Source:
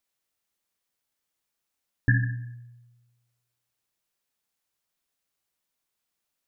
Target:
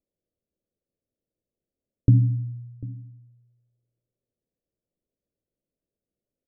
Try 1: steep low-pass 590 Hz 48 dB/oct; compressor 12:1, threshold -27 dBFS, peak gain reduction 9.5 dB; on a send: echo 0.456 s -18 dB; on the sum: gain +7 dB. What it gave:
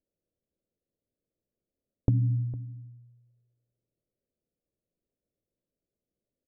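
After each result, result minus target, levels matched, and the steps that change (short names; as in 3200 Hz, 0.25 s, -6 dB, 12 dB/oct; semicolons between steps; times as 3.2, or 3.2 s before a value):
compressor: peak gain reduction +9.5 dB; echo 0.289 s early
remove: compressor 12:1, threshold -27 dBFS, peak gain reduction 9.5 dB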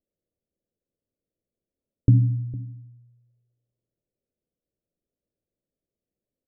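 echo 0.289 s early
change: echo 0.745 s -18 dB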